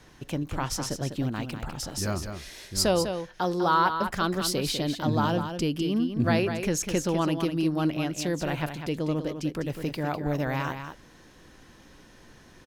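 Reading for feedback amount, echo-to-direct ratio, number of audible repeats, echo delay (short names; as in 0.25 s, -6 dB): no steady repeat, -8.0 dB, 1, 0.2 s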